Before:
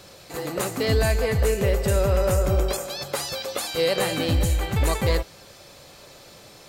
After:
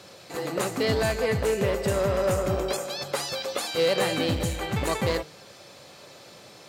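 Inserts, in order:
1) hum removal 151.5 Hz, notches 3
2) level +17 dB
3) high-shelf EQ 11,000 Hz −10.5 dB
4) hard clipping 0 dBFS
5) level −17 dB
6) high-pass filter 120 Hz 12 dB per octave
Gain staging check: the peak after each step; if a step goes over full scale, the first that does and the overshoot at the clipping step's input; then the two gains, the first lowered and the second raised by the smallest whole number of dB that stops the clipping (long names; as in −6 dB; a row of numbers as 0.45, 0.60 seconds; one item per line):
−11.0, +6.0, +5.5, 0.0, −17.0, −12.0 dBFS
step 2, 5.5 dB
step 2 +11 dB, step 5 −11 dB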